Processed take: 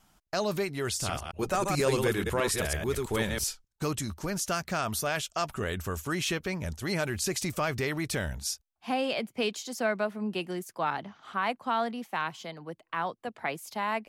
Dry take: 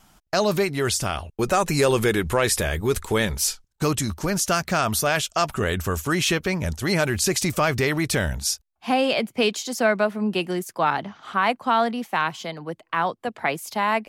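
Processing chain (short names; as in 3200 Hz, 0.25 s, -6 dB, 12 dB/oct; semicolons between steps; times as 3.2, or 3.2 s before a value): 0.88–3.44 reverse delay 0.109 s, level -3 dB; gain -8.5 dB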